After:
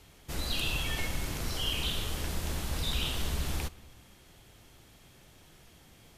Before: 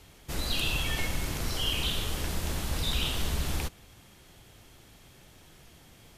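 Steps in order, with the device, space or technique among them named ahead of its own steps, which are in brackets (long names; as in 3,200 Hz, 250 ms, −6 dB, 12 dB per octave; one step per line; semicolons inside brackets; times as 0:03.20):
compressed reverb return (on a send at −13 dB: convolution reverb RT60 1.0 s, pre-delay 17 ms + downward compressor, threshold −33 dBFS, peak gain reduction 10 dB)
on the sum: level −2.5 dB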